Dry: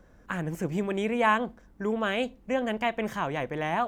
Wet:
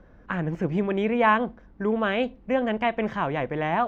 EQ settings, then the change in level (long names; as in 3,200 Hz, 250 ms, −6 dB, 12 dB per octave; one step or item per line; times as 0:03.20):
high-frequency loss of the air 230 metres
+4.5 dB